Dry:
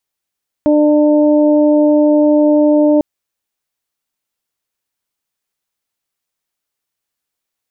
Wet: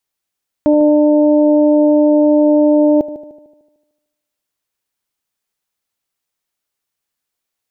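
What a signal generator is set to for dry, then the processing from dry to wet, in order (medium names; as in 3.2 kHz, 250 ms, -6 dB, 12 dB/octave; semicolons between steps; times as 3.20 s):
steady additive tone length 2.35 s, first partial 299 Hz, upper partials -2.5/-17 dB, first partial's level -9 dB
multi-head delay 75 ms, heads first and second, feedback 49%, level -17 dB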